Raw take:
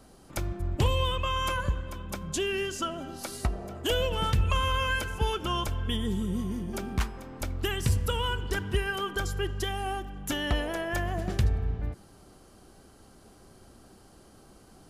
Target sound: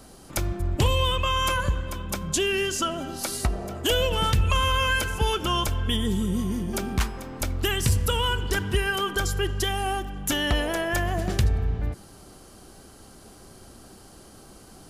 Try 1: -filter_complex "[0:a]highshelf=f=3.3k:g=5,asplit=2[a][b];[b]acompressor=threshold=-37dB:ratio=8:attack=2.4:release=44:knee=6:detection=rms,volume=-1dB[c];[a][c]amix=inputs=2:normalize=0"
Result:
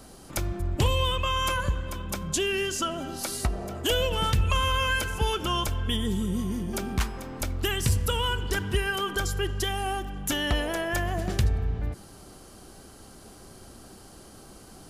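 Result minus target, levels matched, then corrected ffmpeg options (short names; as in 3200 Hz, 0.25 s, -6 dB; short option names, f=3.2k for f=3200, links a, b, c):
compressor: peak gain reduction +9.5 dB
-filter_complex "[0:a]highshelf=f=3.3k:g=5,asplit=2[a][b];[b]acompressor=threshold=-26dB:ratio=8:attack=2.4:release=44:knee=6:detection=rms,volume=-1dB[c];[a][c]amix=inputs=2:normalize=0"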